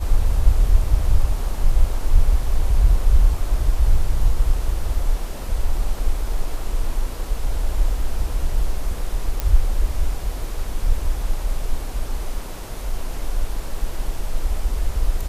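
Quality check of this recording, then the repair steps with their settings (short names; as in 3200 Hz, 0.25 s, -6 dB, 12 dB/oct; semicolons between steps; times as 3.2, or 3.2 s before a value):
9.4 pop -8 dBFS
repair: de-click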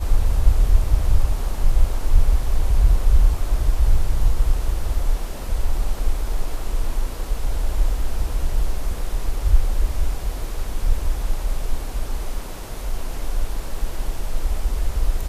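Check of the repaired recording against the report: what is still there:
none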